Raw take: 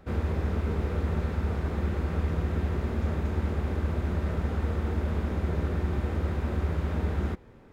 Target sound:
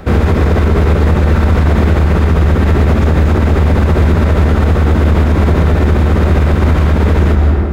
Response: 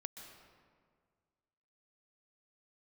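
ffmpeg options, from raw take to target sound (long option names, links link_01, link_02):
-filter_complex "[1:a]atrim=start_sample=2205[link_01];[0:a][link_01]afir=irnorm=-1:irlink=0,acrossover=split=1500[link_02][link_03];[link_02]aeval=exprs='clip(val(0),-1,0.0237)':channel_layout=same[link_04];[link_04][link_03]amix=inputs=2:normalize=0,alimiter=level_in=28dB:limit=-1dB:release=50:level=0:latency=1,volume=-1dB"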